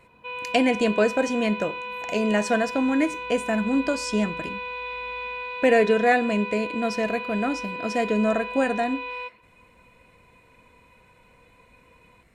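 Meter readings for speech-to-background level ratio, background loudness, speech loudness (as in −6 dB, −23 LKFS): 8.0 dB, −32.0 LKFS, −24.0 LKFS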